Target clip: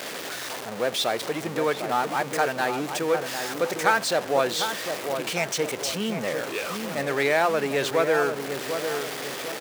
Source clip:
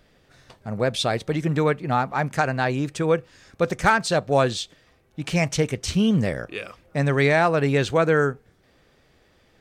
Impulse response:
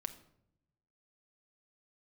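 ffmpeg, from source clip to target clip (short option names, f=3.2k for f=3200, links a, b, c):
-filter_complex "[0:a]aeval=exprs='val(0)+0.5*0.075*sgn(val(0))':c=same,highpass=340,asplit=2[a][b];[b]adelay=751,lowpass=f=1.2k:p=1,volume=-6dB,asplit=2[c][d];[d]adelay=751,lowpass=f=1.2k:p=1,volume=0.46,asplit=2[e][f];[f]adelay=751,lowpass=f=1.2k:p=1,volume=0.46,asplit=2[g][h];[h]adelay=751,lowpass=f=1.2k:p=1,volume=0.46,asplit=2[i][j];[j]adelay=751,lowpass=f=1.2k:p=1,volume=0.46,asplit=2[k][l];[l]adelay=751,lowpass=f=1.2k:p=1,volume=0.46[m];[c][e][g][i][k][m]amix=inputs=6:normalize=0[n];[a][n]amix=inputs=2:normalize=0,volume=-4dB"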